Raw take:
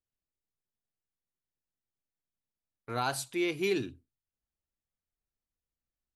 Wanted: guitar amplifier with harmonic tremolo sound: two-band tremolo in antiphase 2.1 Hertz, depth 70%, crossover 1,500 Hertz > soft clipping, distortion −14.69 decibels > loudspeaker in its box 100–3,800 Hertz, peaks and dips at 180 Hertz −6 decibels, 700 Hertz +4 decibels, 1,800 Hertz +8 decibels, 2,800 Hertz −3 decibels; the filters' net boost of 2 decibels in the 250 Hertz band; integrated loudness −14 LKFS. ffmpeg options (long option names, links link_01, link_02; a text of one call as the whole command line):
ffmpeg -i in.wav -filter_complex "[0:a]equalizer=frequency=250:width_type=o:gain=4,acrossover=split=1500[link_01][link_02];[link_01]aeval=exprs='val(0)*(1-0.7/2+0.7/2*cos(2*PI*2.1*n/s))':channel_layout=same[link_03];[link_02]aeval=exprs='val(0)*(1-0.7/2-0.7/2*cos(2*PI*2.1*n/s))':channel_layout=same[link_04];[link_03][link_04]amix=inputs=2:normalize=0,asoftclip=threshold=-28dB,highpass=100,equalizer=frequency=180:width_type=q:width=4:gain=-6,equalizer=frequency=700:width_type=q:width=4:gain=4,equalizer=frequency=1800:width_type=q:width=4:gain=8,equalizer=frequency=2800:width_type=q:width=4:gain=-3,lowpass=frequency=3800:width=0.5412,lowpass=frequency=3800:width=1.3066,volume=23dB" out.wav